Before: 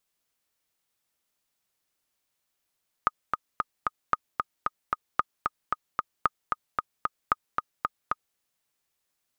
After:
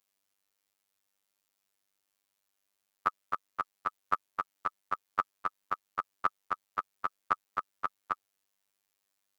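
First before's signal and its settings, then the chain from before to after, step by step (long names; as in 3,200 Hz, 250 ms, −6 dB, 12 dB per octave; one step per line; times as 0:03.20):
click track 226 BPM, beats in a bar 4, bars 5, 1,240 Hz, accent 4 dB −8 dBFS
low-shelf EQ 150 Hz −7.5 dB
phases set to zero 98.7 Hz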